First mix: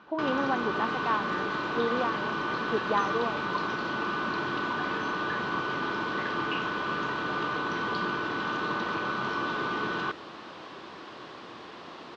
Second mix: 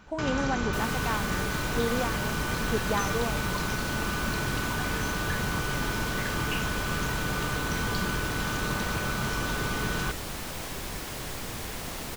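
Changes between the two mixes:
second sound +6.0 dB; master: remove speaker cabinet 240–4100 Hz, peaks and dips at 340 Hz +6 dB, 1100 Hz +7 dB, 2200 Hz -5 dB

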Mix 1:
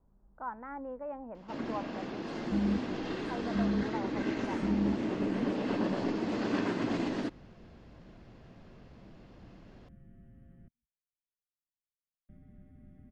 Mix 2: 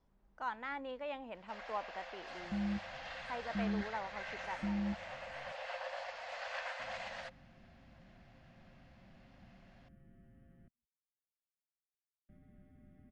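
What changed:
speech: remove LPF 1400 Hz 24 dB/oct; first sound: add rippled Chebyshev high-pass 510 Hz, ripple 6 dB; master: add low shelf 380 Hz -7.5 dB

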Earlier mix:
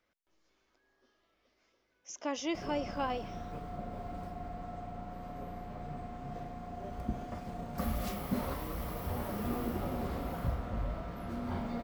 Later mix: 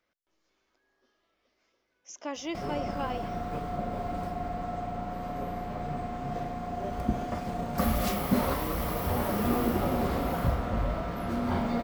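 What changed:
background +9.5 dB; master: add low shelf 150 Hz -4.5 dB

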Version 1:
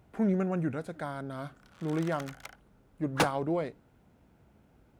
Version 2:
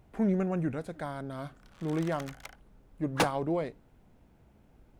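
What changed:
speech: remove HPF 61 Hz; master: add bell 1400 Hz -4 dB 0.2 oct

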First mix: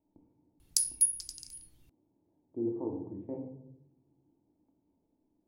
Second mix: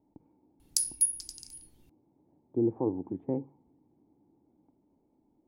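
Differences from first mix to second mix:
speech +11.5 dB; reverb: off

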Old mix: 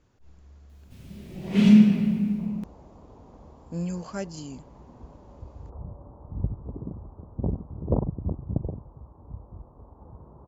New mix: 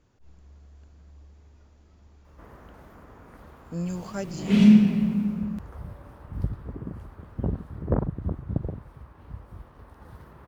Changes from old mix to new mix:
first sound: entry +2.95 s; second sound: remove steep low-pass 1000 Hz 36 dB/oct

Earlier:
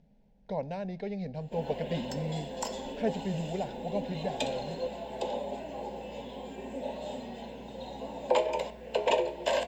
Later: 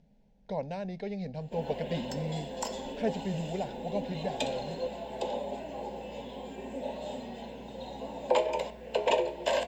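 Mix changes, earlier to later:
speech: add high shelf 4300 Hz +5.5 dB; reverb: off

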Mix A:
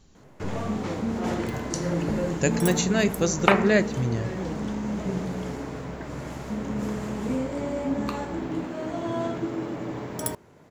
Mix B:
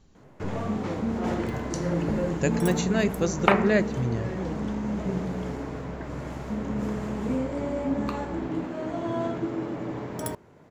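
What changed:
speech: send -11.5 dB; second sound: send on; master: add high shelf 3500 Hz -7 dB

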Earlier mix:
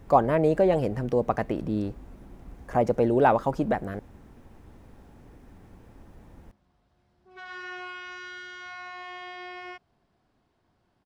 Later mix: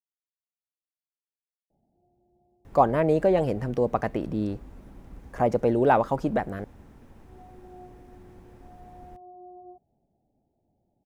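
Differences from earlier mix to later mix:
speech: entry +2.65 s; background: add rippled Chebyshev low-pass 850 Hz, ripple 3 dB

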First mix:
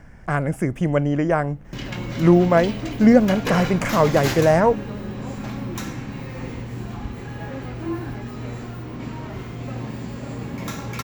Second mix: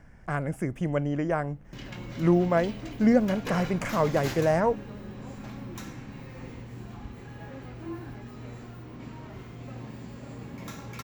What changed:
speech -7.5 dB; background -10.0 dB

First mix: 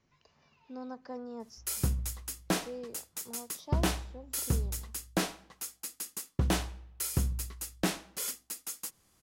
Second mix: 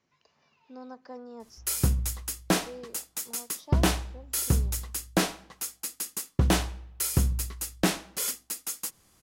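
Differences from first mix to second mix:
speech: add HPF 230 Hz 6 dB/oct; background +5.5 dB

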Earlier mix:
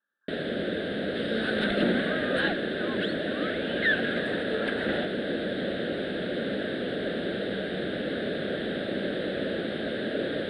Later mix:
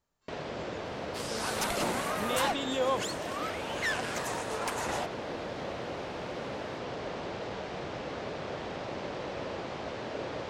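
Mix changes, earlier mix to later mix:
speech: remove brick-wall FIR band-pass 800–1800 Hz; second sound: remove air absorption 200 m; master: remove EQ curve 130 Hz 0 dB, 200 Hz +13 dB, 610 Hz +6 dB, 1000 Hz -17 dB, 1600 Hz +13 dB, 2400 Hz -1 dB, 3700 Hz +13 dB, 6300 Hz -29 dB, 9300 Hz +13 dB, 13000 Hz -15 dB

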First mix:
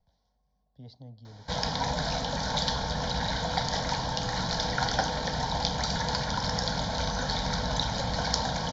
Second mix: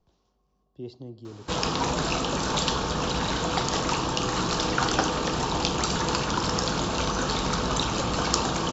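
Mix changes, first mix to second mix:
speech: send +10.5 dB; master: remove fixed phaser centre 1800 Hz, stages 8

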